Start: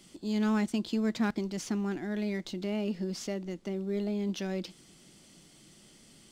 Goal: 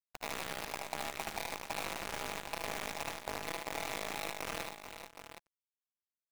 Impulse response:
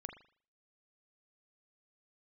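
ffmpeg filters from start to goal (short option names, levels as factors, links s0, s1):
-filter_complex "[0:a]afftfilt=real='real(if(between(b,1,1008),(2*floor((b-1)/48)+1)*48-b,b),0)':imag='imag(if(between(b,1,1008),(2*floor((b-1)/48)+1)*48-b,b),0)*if(between(b,1,1008),-1,1)':win_size=2048:overlap=0.75,afwtdn=0.0141,lowpass=4100,equalizer=f=100:t=o:w=0.29:g=11,acrossover=split=150|3000[s0][s1][s2];[s1]acompressor=threshold=0.0224:ratio=6[s3];[s0][s3][s2]amix=inputs=3:normalize=0,alimiter=level_in=2.99:limit=0.0631:level=0:latency=1:release=33,volume=0.335,acompressor=threshold=0.00251:ratio=2.5,tremolo=f=150:d=0.462,acrusher=bits=8:mix=0:aa=0.000001,aeval=exprs='0.00794*(cos(1*acos(clip(val(0)/0.00794,-1,1)))-cos(1*PI/2))+0.000708*(cos(2*acos(clip(val(0)/0.00794,-1,1)))-cos(2*PI/2))+0.00355*(cos(3*acos(clip(val(0)/0.00794,-1,1)))-cos(3*PI/2))':c=same,asplit=2[s4][s5];[s5]aecho=0:1:60|75|116|434|604|768:0.237|0.668|0.237|0.355|0.126|0.316[s6];[s4][s6]amix=inputs=2:normalize=0,volume=4.47"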